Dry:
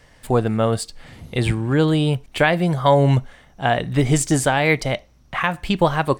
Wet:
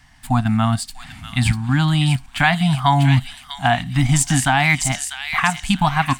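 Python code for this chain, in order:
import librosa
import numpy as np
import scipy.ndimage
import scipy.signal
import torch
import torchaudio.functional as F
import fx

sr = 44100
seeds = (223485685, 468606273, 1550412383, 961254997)

p1 = scipy.signal.sosfilt(scipy.signal.ellip(3, 1.0, 40, [270.0, 720.0], 'bandstop', fs=sr, output='sos'), x)
p2 = fx.level_steps(p1, sr, step_db=23)
p3 = p1 + F.gain(torch.from_numpy(p2), -1.0).numpy()
y = fx.echo_wet_highpass(p3, sr, ms=645, feedback_pct=34, hz=2600.0, wet_db=-3)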